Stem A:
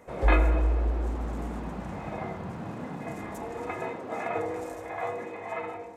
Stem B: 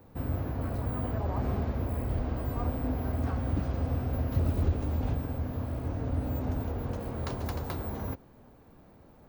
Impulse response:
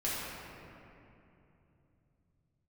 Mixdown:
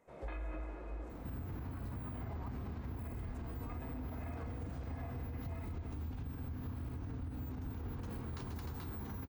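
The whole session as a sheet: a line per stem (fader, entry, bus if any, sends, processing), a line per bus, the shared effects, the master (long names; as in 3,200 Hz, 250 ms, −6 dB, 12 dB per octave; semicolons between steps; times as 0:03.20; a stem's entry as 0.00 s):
−18.5 dB, 0.00 s, send −9.5 dB, no processing
+2.5 dB, 1.10 s, no send, parametric band 590 Hz −13 dB 0.68 octaves; downward compressor, threshold −38 dBFS, peak gain reduction 16 dB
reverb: on, RT60 2.9 s, pre-delay 3 ms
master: brickwall limiter −35 dBFS, peak gain reduction 10 dB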